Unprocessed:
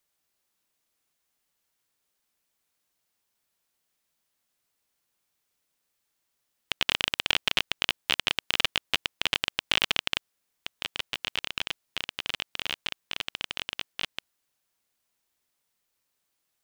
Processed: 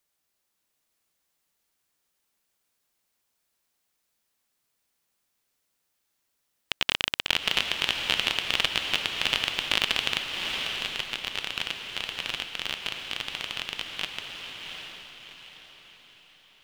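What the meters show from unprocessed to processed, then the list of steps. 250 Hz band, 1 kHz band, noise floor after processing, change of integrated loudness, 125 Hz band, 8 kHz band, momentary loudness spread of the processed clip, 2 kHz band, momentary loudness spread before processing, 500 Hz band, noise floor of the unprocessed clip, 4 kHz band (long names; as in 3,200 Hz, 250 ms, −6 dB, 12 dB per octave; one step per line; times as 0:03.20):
+1.5 dB, +1.5 dB, −77 dBFS, +1.0 dB, +2.0 dB, +1.5 dB, 13 LU, +1.5 dB, 10 LU, +2.0 dB, −79 dBFS, +1.5 dB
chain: feedback delay with all-pass diffusion 735 ms, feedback 42%, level −4 dB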